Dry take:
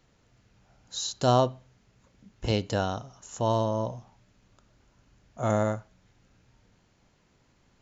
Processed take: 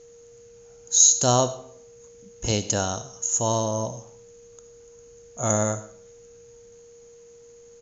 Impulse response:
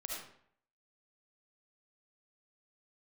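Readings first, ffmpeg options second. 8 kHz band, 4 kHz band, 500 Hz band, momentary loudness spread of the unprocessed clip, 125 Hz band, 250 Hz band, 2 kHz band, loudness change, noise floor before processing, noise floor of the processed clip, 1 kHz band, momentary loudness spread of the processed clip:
no reading, +6.0 dB, +1.5 dB, 15 LU, +1.0 dB, +1.0 dB, +2.0 dB, +6.5 dB, -66 dBFS, -50 dBFS, +1.5 dB, 18 LU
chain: -filter_complex "[0:a]lowpass=f=6600:t=q:w=15,asplit=2[s0][s1];[s1]adelay=120,highpass=300,lowpass=3400,asoftclip=type=hard:threshold=0.237,volume=0.0447[s2];[s0][s2]amix=inputs=2:normalize=0,asplit=2[s3][s4];[1:a]atrim=start_sample=2205,highshelf=f=3800:g=9.5[s5];[s4][s5]afir=irnorm=-1:irlink=0,volume=0.237[s6];[s3][s6]amix=inputs=2:normalize=0,aeval=exprs='val(0)+0.00447*sin(2*PI*470*n/s)':c=same"

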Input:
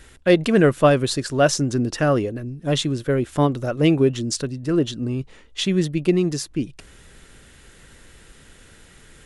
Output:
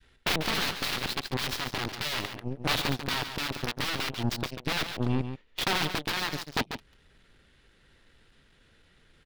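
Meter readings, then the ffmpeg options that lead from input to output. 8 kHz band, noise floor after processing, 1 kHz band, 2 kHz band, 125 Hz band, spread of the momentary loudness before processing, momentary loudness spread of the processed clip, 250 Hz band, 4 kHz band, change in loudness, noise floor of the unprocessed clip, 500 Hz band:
-8.5 dB, -63 dBFS, -6.0 dB, -2.0 dB, -12.0 dB, 11 LU, 5 LU, -14.5 dB, -0.5 dB, -9.5 dB, -49 dBFS, -18.0 dB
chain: -filter_complex "[0:a]agate=range=0.0224:threshold=0.00501:ratio=3:detection=peak,aeval=exprs='(mod(7.08*val(0)+1,2)-1)/7.08':c=same,adynamicequalizer=threshold=0.01:dfrequency=560:dqfactor=1.1:tfrequency=560:tqfactor=1.1:attack=5:release=100:ratio=0.375:range=2.5:mode=cutabove:tftype=bell,acontrast=47,alimiter=limit=0.119:level=0:latency=1:release=411,aeval=exprs='0.119*(cos(1*acos(clip(val(0)/0.119,-1,1)))-cos(1*PI/2))+0.0422*(cos(3*acos(clip(val(0)/0.119,-1,1)))-cos(3*PI/2))+0.0211*(cos(4*acos(clip(val(0)/0.119,-1,1)))-cos(4*PI/2))+0.0106*(cos(6*acos(clip(val(0)/0.119,-1,1)))-cos(6*PI/2))+0.0015*(cos(7*acos(clip(val(0)/0.119,-1,1)))-cos(7*PI/2))':c=same,highshelf=f=5600:t=q:w=1.5:g=-9,asplit=2[s0][s1];[s1]aecho=0:1:142:0.355[s2];[s0][s2]amix=inputs=2:normalize=0,volume=0.891"

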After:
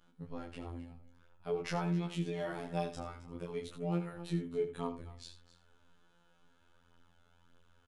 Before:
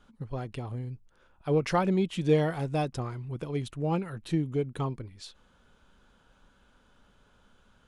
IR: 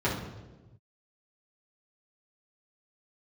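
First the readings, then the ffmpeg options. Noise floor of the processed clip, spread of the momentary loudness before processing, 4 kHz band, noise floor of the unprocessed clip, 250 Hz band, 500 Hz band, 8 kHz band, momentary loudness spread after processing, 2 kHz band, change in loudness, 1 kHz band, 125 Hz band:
-68 dBFS, 16 LU, -7.0 dB, -64 dBFS, -8.0 dB, -8.5 dB, -6.0 dB, 13 LU, -7.5 dB, -8.5 dB, -9.0 dB, -9.5 dB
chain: -filter_complex "[0:a]asplit=2[s0][s1];[s1]aecho=0:1:265:0.158[s2];[s0][s2]amix=inputs=2:normalize=0,alimiter=limit=0.0944:level=0:latency=1:release=77,afftfilt=real='hypot(re,im)*cos(PI*b)':imag='0':win_size=2048:overlap=0.75,flanger=delay=17.5:depth=7.2:speed=0.48,asplit=2[s3][s4];[s4]aecho=0:1:79:0.251[s5];[s3][s5]amix=inputs=2:normalize=0"

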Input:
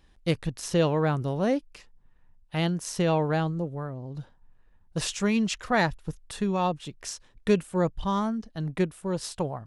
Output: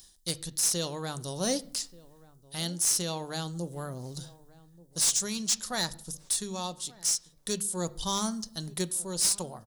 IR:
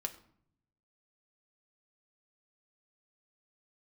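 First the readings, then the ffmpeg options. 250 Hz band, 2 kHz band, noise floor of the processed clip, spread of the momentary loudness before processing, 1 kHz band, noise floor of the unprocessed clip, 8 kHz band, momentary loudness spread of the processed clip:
-9.0 dB, -8.5 dB, -59 dBFS, 12 LU, -8.0 dB, -59 dBFS, +12.5 dB, 14 LU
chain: -filter_complex "[0:a]highshelf=f=2300:g=9.5,bandreject=f=50:t=h:w=6,bandreject=f=100:t=h:w=6,bandreject=f=150:t=h:w=6,bandreject=f=200:t=h:w=6,aexciter=amount=8.4:drive=8.8:freq=3800,dynaudnorm=f=120:g=13:m=1.78,asoftclip=type=tanh:threshold=0.237,asplit=2[s0][s1];[s1]adelay=1182,lowpass=f=890:p=1,volume=0.1,asplit=2[s2][s3];[s3]adelay=1182,lowpass=f=890:p=1,volume=0.35,asplit=2[s4][s5];[s5]adelay=1182,lowpass=f=890:p=1,volume=0.35[s6];[s0][s2][s4][s6]amix=inputs=4:normalize=0,asplit=2[s7][s8];[1:a]atrim=start_sample=2205,lowpass=3200[s9];[s8][s9]afir=irnorm=-1:irlink=0,volume=0.841[s10];[s7][s10]amix=inputs=2:normalize=0,volume=0.473"

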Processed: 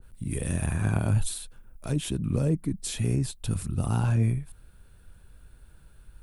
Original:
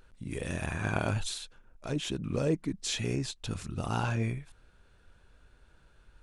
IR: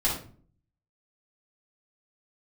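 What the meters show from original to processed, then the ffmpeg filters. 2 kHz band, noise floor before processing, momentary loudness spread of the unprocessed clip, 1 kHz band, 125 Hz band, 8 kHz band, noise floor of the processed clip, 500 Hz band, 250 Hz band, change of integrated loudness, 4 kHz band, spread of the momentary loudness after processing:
-3.0 dB, -62 dBFS, 9 LU, -2.0 dB, +8.5 dB, +4.5 dB, -54 dBFS, -1.0 dB, +4.5 dB, +5.0 dB, -3.0 dB, 10 LU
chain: -filter_complex "[0:a]bass=f=250:g=9,treble=f=4000:g=3,acrossover=split=240[s0][s1];[s1]acompressor=threshold=0.0398:ratio=6[s2];[s0][s2]amix=inputs=2:normalize=0,aexciter=amount=6.2:drive=4.3:freq=8800,adynamicequalizer=threshold=0.00355:dfrequency=1500:dqfactor=0.7:tfrequency=1500:tqfactor=0.7:attack=5:release=100:ratio=0.375:range=2.5:mode=cutabove:tftype=highshelf"

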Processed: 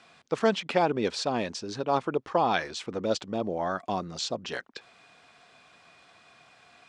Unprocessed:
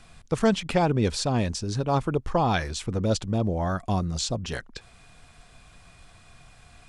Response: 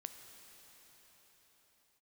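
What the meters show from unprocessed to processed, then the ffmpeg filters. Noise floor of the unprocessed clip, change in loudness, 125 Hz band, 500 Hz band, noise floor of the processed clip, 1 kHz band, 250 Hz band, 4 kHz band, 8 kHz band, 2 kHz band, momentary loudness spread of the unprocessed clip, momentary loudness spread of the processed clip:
-54 dBFS, -3.0 dB, -14.0 dB, -0.5 dB, -59 dBFS, 0.0 dB, -5.5 dB, -1.5 dB, -6.5 dB, 0.0 dB, 8 LU, 9 LU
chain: -af "highpass=300,lowpass=5100"

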